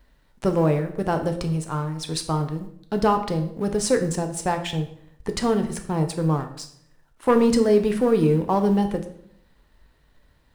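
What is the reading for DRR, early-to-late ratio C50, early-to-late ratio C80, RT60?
5.5 dB, 10.5 dB, 13.5 dB, 0.70 s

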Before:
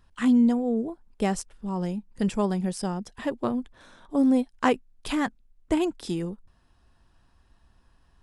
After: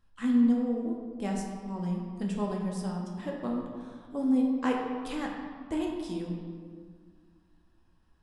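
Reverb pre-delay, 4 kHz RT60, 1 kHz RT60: 4 ms, 1.1 s, 1.7 s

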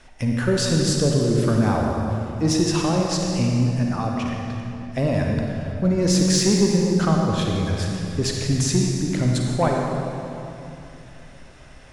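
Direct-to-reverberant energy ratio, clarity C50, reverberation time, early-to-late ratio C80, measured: −0.5 dB, 0.0 dB, 2.8 s, 1.5 dB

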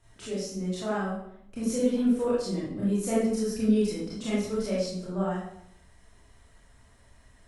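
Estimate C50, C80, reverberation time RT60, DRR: −1.5 dB, 4.0 dB, 0.75 s, −9.0 dB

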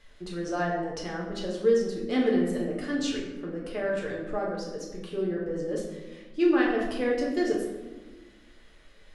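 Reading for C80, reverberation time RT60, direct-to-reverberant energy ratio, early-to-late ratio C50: 5.5 dB, 1.3 s, −3.0 dB, 3.5 dB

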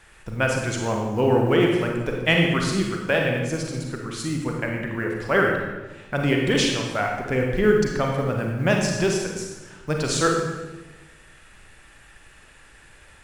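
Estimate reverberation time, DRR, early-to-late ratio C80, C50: 1.2 s, 0.5 dB, 4.5 dB, 2.5 dB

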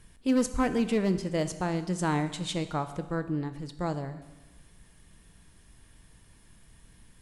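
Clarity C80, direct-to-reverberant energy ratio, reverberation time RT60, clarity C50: 14.0 dB, 10.0 dB, 1.2 s, 12.5 dB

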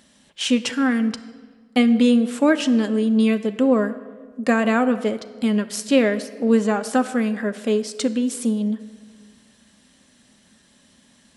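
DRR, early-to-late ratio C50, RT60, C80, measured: 9.0 dB, 14.0 dB, 1.6 s, 15.5 dB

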